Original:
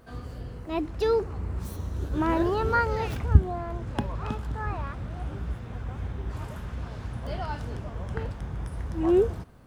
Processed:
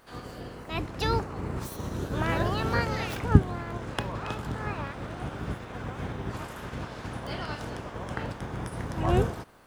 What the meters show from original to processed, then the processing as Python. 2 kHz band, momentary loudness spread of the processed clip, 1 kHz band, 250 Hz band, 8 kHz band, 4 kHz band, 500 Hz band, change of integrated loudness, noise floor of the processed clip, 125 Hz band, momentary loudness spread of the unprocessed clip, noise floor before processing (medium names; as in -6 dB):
+2.0 dB, 12 LU, -1.0 dB, -1.5 dB, no reading, +6.0 dB, -4.5 dB, -2.0 dB, -43 dBFS, -0.5 dB, 14 LU, -41 dBFS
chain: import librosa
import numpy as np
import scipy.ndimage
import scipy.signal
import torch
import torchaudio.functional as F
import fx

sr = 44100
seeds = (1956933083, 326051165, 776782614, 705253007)

y = fx.spec_clip(x, sr, under_db=19)
y = fx.dynamic_eq(y, sr, hz=110.0, q=1.7, threshold_db=-45.0, ratio=4.0, max_db=7)
y = y * librosa.db_to_amplitude(-3.5)